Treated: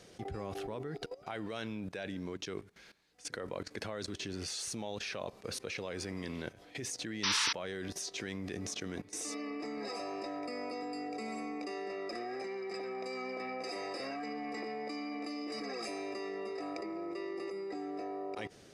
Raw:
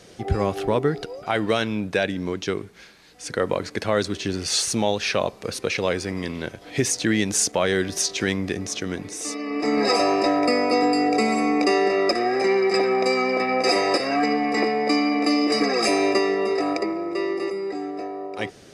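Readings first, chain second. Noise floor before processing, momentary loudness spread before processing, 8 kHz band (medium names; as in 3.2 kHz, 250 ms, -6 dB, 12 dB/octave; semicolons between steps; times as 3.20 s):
-47 dBFS, 10 LU, -14.5 dB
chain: level held to a coarse grid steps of 17 dB; painted sound noise, 7.23–7.53 s, 860–6100 Hz -25 dBFS; trim -6 dB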